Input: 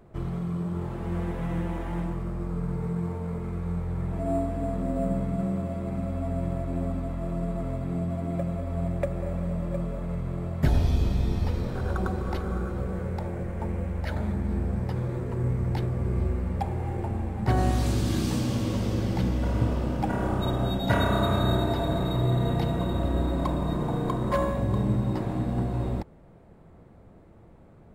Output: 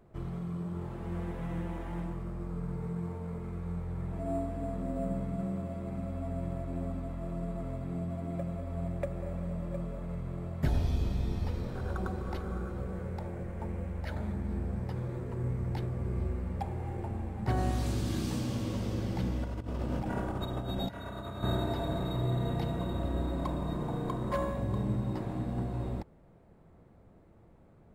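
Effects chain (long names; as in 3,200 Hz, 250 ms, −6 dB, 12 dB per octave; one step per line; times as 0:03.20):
0:19.44–0:21.44: compressor whose output falls as the input rises −28 dBFS, ratio −0.5
level −6.5 dB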